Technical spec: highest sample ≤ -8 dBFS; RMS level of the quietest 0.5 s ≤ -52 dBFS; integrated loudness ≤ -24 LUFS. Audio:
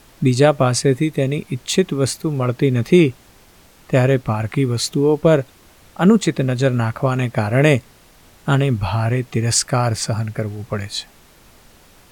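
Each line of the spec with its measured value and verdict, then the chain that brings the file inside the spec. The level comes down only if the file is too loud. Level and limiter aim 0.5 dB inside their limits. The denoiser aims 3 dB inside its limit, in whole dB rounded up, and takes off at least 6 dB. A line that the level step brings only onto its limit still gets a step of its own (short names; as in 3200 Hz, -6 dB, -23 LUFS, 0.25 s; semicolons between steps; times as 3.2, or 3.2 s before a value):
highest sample -2.0 dBFS: fail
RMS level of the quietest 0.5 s -49 dBFS: fail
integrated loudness -18.0 LUFS: fail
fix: gain -6.5 dB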